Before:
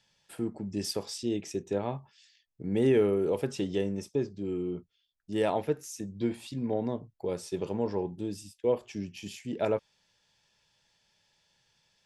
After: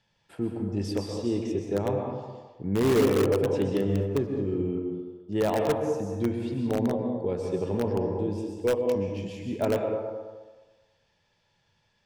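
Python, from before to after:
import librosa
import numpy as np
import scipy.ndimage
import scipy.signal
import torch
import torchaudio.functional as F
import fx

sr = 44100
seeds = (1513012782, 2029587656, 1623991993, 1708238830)

p1 = fx.lowpass(x, sr, hz=1800.0, slope=6)
p2 = fx.backlash(p1, sr, play_db=-44.0, at=(3.76, 4.3))
p3 = fx.echo_wet_bandpass(p2, sr, ms=210, feedback_pct=31, hz=670.0, wet_db=-9)
p4 = fx.rev_plate(p3, sr, seeds[0], rt60_s=1.0, hf_ratio=0.75, predelay_ms=110, drr_db=2.0)
p5 = (np.mod(10.0 ** (19.0 / 20.0) * p4 + 1.0, 2.0) - 1.0) / 10.0 ** (19.0 / 20.0)
p6 = p4 + (p5 * librosa.db_to_amplitude(-9.0))
y = fx.peak_eq(p6, sr, hz=97.0, db=7.0, octaves=0.29)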